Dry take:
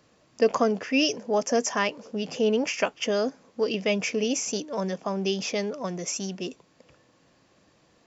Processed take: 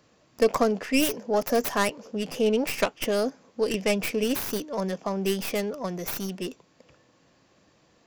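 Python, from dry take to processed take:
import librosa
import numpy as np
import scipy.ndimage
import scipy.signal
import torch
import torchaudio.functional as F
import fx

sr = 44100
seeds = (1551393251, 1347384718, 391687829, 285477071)

y = fx.tracing_dist(x, sr, depth_ms=0.31)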